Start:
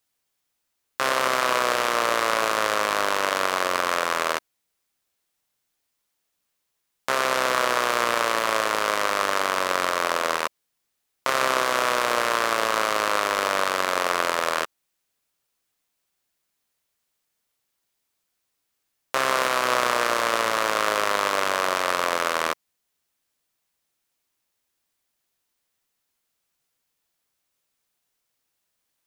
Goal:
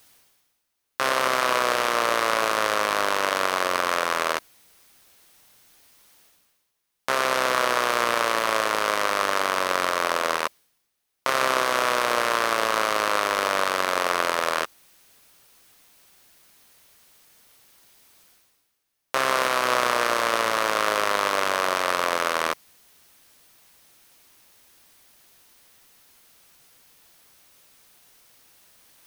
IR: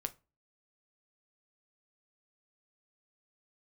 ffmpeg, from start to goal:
-af "areverse,acompressor=mode=upward:threshold=-38dB:ratio=2.5,areverse,bandreject=f=7.3k:w=14"

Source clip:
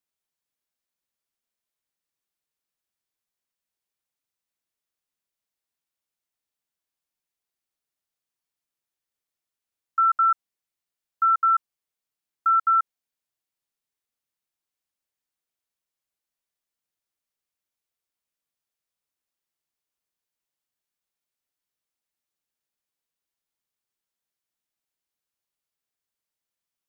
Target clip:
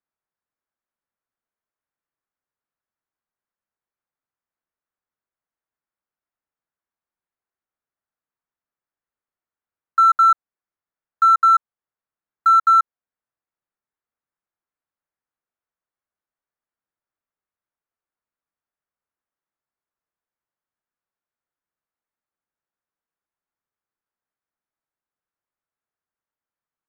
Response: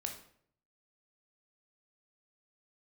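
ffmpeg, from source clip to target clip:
-af "alimiter=limit=-19dB:level=0:latency=1:release=349,adynamicsmooth=sensitivity=7.5:basefreq=1.3k,equalizer=f=1.5k:w=0.75:g=10.5"

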